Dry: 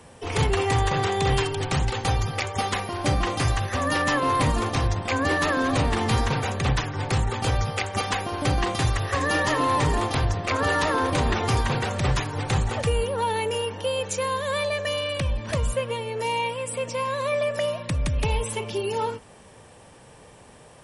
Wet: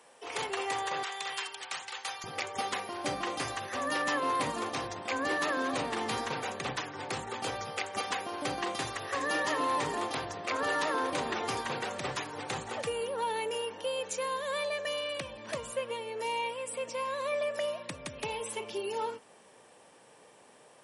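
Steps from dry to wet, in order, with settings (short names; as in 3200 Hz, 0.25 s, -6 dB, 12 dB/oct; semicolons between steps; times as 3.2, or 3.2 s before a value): HPF 490 Hz 12 dB/oct, from 1.03 s 1100 Hz, from 2.24 s 280 Hz; gain -7 dB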